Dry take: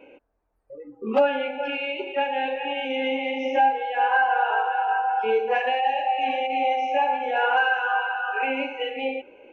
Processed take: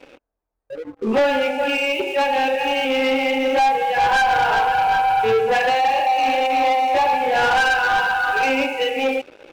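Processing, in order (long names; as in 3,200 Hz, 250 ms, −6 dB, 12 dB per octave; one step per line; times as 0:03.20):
leveller curve on the samples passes 3
level −2 dB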